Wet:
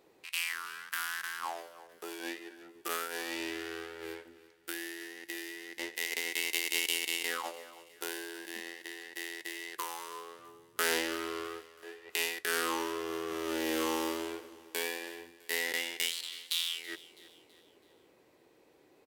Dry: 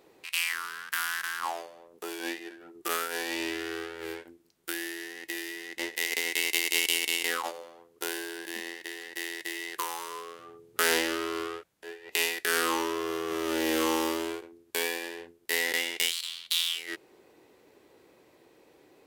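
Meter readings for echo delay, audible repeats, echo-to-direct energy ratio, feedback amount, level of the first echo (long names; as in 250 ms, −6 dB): 328 ms, 3, −18.0 dB, 45%, −19.0 dB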